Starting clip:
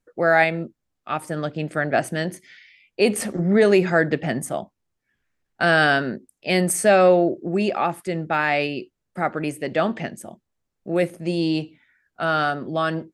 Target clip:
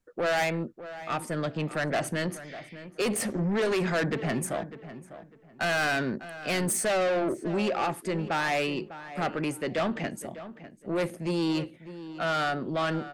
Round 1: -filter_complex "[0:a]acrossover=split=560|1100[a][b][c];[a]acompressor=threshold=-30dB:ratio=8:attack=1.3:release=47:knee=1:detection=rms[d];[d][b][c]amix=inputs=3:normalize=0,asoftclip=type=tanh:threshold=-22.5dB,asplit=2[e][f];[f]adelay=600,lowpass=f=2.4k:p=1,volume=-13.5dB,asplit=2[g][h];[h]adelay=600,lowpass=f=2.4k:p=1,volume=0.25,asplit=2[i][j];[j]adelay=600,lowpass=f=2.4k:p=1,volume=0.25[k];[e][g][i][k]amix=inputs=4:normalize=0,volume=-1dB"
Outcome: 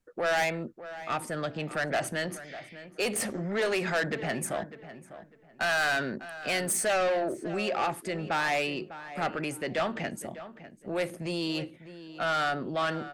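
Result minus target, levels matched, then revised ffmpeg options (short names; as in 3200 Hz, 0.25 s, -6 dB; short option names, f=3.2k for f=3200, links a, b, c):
compressor: peak gain reduction +10.5 dB
-filter_complex "[0:a]acrossover=split=560|1100[a][b][c];[a]acompressor=threshold=-18dB:ratio=8:attack=1.3:release=47:knee=1:detection=rms[d];[d][b][c]amix=inputs=3:normalize=0,asoftclip=type=tanh:threshold=-22.5dB,asplit=2[e][f];[f]adelay=600,lowpass=f=2.4k:p=1,volume=-13.5dB,asplit=2[g][h];[h]adelay=600,lowpass=f=2.4k:p=1,volume=0.25,asplit=2[i][j];[j]adelay=600,lowpass=f=2.4k:p=1,volume=0.25[k];[e][g][i][k]amix=inputs=4:normalize=0,volume=-1dB"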